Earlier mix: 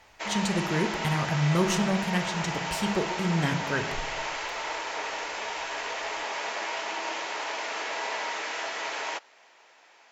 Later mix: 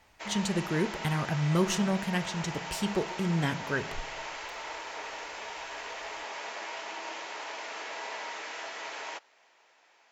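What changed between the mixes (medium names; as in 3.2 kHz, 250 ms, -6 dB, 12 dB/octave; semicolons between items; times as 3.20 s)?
speech: send -8.5 dB; background -6.5 dB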